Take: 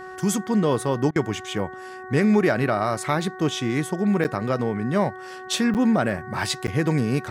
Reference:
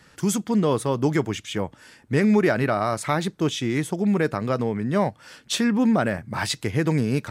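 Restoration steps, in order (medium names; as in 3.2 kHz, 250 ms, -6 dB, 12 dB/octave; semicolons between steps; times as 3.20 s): de-hum 372.7 Hz, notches 5; interpolate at 4.24/5.74/6.67 s, 8.8 ms; interpolate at 1.11 s, 47 ms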